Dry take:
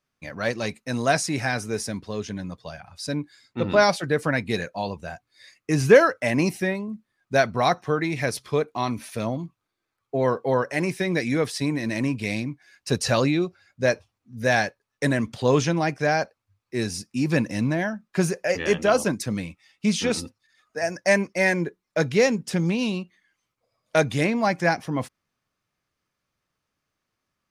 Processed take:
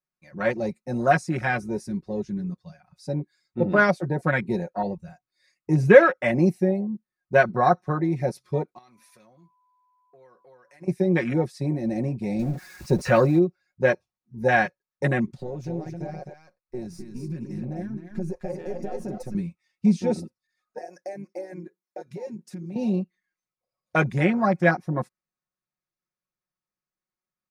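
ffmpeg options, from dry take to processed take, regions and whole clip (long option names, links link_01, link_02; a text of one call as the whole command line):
ffmpeg -i in.wav -filter_complex "[0:a]asettb=1/sr,asplit=3[link_01][link_02][link_03];[link_01]atrim=end=8.784[link_04];[link_02]atrim=start=8.78:end=10.88,asetpts=PTS-STARTPTS,afade=type=in:duration=0.004:curve=qsin,afade=type=out:start_time=2.096:duration=0.004:curve=qsin,lowshelf=frequency=390:gain=-9,aeval=exprs='val(0)+0.0141*sin(2*PI*1000*n/s)':channel_layout=same,acompressor=threshold=-34dB:ratio=16:attack=3.2:release=140:knee=1:detection=peak[link_05];[link_03]atrim=start=10.876[link_06];[link_04][link_05]acrossfade=duration=0.004:curve1=hsin:curve2=qsin[link_07];[link_07][link_06]acrossfade=duration=0.004:curve1=qsin:curve2=hsin,asettb=1/sr,asplit=3[link_08][link_09][link_10];[link_08]atrim=end=12.394[link_11];[link_09]atrim=start=12.39:end=13.39,asetpts=PTS-STARTPTS,afade=type=in:duration=0.004:curve=qsin,afade=type=out:start_time=0.996:duration=0.004:curve=qsin,aeval=exprs='val(0)+0.5*0.0473*sgn(val(0))':channel_layout=same,deesser=0.25[link_12];[link_10]atrim=start=13.386[link_13];[link_11][link_12]acrossfade=duration=0.004:curve1=hsin:curve2=qsin[link_14];[link_14][link_13]acrossfade=duration=0.004:curve1=qsin:curve2=hsin,asettb=1/sr,asplit=3[link_15][link_16][link_17];[link_15]atrim=end=15.384[link_18];[link_16]atrim=start=15.38:end=19.35,asetpts=PTS-STARTPTS,afade=type=in:duration=0.004:curve=qsin,afade=type=out:start_time=3.966:duration=0.004:curve=qsin,aeval=exprs='if(lt(val(0),0),0.447*val(0),val(0))':channel_layout=same,acompressor=threshold=-28dB:ratio=8:attack=3.2:release=140:knee=1:detection=peak,aecho=1:1:258:0.596,atrim=end_sample=175077[link_19];[link_17]atrim=start=19.346[link_20];[link_18][link_19]acrossfade=duration=0.004:curve1=hsin:curve2=qsin[link_21];[link_21][link_20]acrossfade=duration=0.004:curve1=qsin:curve2=hsin,asettb=1/sr,asplit=3[link_22][link_23][link_24];[link_22]atrim=end=20.784[link_25];[link_23]atrim=start=20.78:end=22.76,asetpts=PTS-STARTPTS,afade=type=in:duration=0.004:curve=qsin,afade=type=out:start_time=1.976:duration=0.004:curve=qsin,highshelf=frequency=9800:gain=9.5,acompressor=threshold=-30dB:ratio=12:attack=3.2:release=140:knee=1:detection=peak,highpass=220[link_26];[link_24]atrim=start=22.756[link_27];[link_25][link_26]acrossfade=duration=0.004:curve1=hsin:curve2=qsin[link_28];[link_28][link_27]acrossfade=duration=0.004:curve1=qsin:curve2=hsin,afwtdn=0.0501,equalizer=frequency=3100:width_type=o:width=0.28:gain=-9.5,aecho=1:1:5.5:0.73" out.wav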